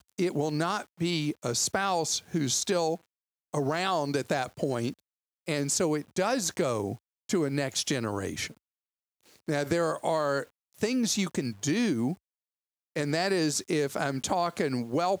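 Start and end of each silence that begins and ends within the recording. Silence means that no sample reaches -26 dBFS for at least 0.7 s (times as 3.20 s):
8.45–9.49 s
12.12–12.96 s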